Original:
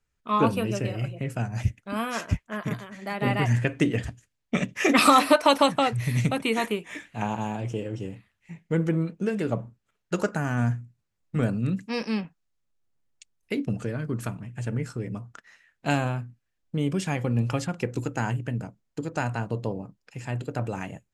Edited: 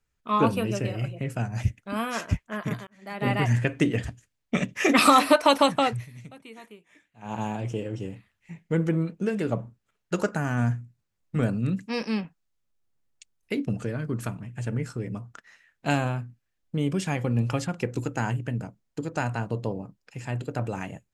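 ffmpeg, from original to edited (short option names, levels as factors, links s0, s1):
-filter_complex "[0:a]asplit=4[s0][s1][s2][s3];[s0]atrim=end=2.87,asetpts=PTS-STARTPTS,afade=t=out:st=2.866:d=0.004:c=hsin[s4];[s1]atrim=start=2.87:end=6.07,asetpts=PTS-STARTPTS,afade=t=in:d=0.43,afade=t=out:st=3.04:d=0.16:silence=0.1[s5];[s2]atrim=start=6.07:end=7.22,asetpts=PTS-STARTPTS,volume=0.1[s6];[s3]atrim=start=7.22,asetpts=PTS-STARTPTS,afade=t=in:d=0.16:silence=0.1[s7];[s4][s5][s6][s7]concat=n=4:v=0:a=1"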